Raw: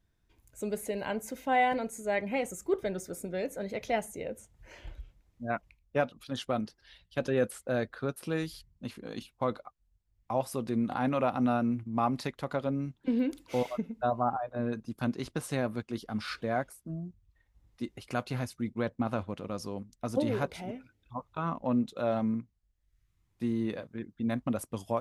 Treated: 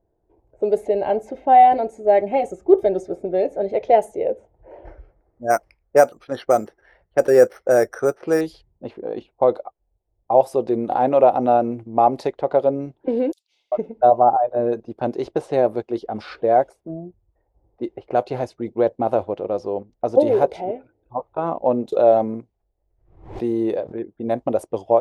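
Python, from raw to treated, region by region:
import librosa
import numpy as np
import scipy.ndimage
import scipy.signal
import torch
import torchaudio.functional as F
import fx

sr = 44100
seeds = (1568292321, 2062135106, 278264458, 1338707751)

y = fx.chain(x, sr, fx.low_shelf(hz=93.0, db=11.0),
    fx.notch_comb(f0_hz=490.0), at=(0.75, 3.75))
y = fx.chain(y, sr, fx.band_shelf(hz=1600.0, db=9.5, octaves=1.1),
    fx.resample_bad(factor=6, down='filtered', up='hold'), at=(4.85, 8.41))
y = fx.chain(y, sr, fx.cheby2_highpass(hz=660.0, order=4, stop_db=80),
    fx.quant_float(bits=4), at=(13.32, 13.72))
y = fx.chain(y, sr, fx.high_shelf(hz=10000.0, db=5.5),
    fx.pre_swell(db_per_s=80.0), at=(21.92, 23.98))
y = fx.env_lowpass(y, sr, base_hz=880.0, full_db=-27.0)
y = fx.band_shelf(y, sr, hz=540.0, db=15.5, octaves=1.7)
y = y * 10.0 ** (1.0 / 20.0)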